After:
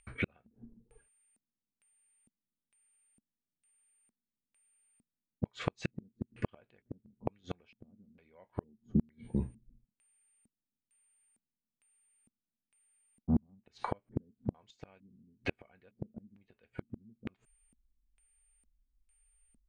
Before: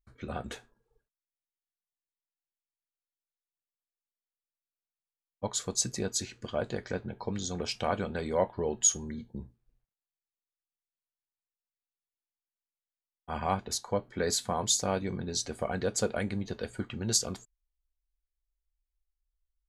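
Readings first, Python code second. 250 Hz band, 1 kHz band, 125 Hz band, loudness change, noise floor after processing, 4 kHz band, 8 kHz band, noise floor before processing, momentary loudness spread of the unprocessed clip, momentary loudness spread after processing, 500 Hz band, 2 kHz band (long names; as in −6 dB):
−1.5 dB, −11.5 dB, −2.5 dB, −8.0 dB, below −85 dBFS, −19.5 dB, below −30 dB, below −85 dBFS, 13 LU, 20 LU, −13.0 dB, −5.5 dB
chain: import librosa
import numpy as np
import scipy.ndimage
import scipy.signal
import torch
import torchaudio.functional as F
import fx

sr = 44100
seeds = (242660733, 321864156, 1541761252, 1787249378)

y = x + 10.0 ** (-54.0 / 20.0) * np.sin(2.0 * np.pi * 9000.0 * np.arange(len(x)) / sr)
y = fx.filter_lfo_lowpass(y, sr, shape='square', hz=1.1, low_hz=230.0, high_hz=2500.0, q=4.0)
y = fx.gate_flip(y, sr, shuts_db=-26.0, range_db=-41)
y = y * librosa.db_to_amplitude(8.5)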